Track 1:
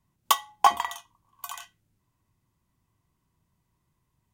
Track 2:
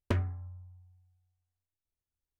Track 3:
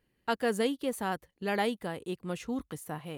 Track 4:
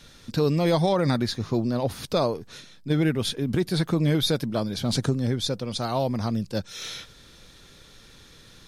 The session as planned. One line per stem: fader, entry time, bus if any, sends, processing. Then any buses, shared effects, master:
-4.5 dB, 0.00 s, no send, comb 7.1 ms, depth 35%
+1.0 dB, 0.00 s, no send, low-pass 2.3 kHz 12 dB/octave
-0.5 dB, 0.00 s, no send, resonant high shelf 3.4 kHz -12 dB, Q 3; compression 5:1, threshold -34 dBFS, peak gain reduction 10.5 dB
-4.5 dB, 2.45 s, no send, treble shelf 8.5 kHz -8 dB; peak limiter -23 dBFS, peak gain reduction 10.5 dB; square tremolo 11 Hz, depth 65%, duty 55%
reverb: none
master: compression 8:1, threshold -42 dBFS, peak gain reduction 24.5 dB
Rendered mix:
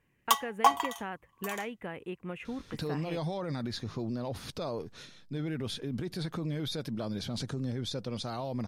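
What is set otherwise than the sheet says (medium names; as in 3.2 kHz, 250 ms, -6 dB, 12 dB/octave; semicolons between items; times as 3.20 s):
stem 2: muted; stem 4: missing square tremolo 11 Hz, depth 65%, duty 55%; master: missing compression 8:1, threshold -42 dBFS, peak gain reduction 24.5 dB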